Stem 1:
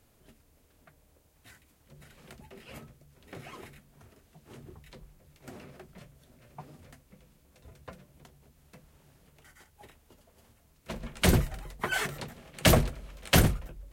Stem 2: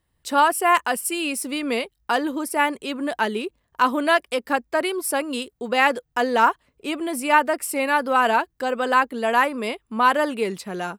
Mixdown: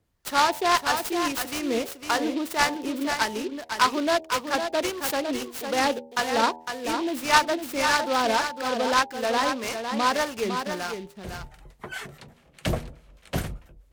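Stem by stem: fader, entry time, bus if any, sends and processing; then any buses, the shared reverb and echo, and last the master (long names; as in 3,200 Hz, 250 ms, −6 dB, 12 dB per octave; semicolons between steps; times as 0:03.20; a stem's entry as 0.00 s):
−3.0 dB, 0.00 s, no send, no echo send, high-shelf EQ 9,600 Hz −6 dB; two-band tremolo in antiphase 4.8 Hz, depth 70%, crossover 890 Hz; automatic ducking −19 dB, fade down 0.25 s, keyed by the second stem
0.0 dB, 0.00 s, no send, echo send −7 dB, two-band tremolo in antiphase 1.7 Hz, depth 70%, crossover 770 Hz; short delay modulated by noise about 2,900 Hz, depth 0.057 ms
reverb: not used
echo: single-tap delay 505 ms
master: hum removal 80.27 Hz, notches 12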